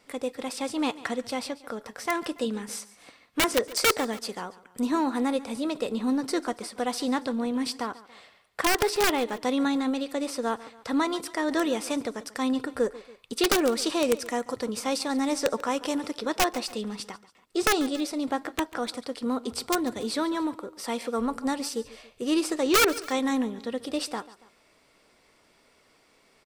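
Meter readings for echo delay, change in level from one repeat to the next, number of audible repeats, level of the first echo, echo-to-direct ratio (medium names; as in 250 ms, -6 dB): 141 ms, -6.0 dB, 2, -18.5 dB, -17.5 dB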